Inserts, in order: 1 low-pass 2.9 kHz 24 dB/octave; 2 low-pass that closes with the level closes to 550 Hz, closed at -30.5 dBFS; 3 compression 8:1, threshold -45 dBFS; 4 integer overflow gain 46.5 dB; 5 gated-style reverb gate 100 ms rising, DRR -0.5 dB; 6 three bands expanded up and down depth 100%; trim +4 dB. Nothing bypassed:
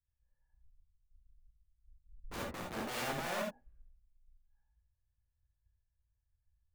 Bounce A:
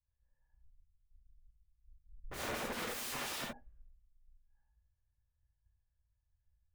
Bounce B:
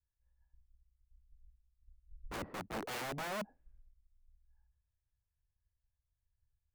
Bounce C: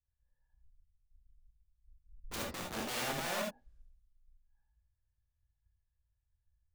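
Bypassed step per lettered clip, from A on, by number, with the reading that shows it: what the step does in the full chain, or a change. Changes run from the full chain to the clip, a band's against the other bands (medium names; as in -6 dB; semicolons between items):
3, mean gain reduction 10.0 dB; 5, momentary loudness spread change +2 LU; 1, 8 kHz band +5.5 dB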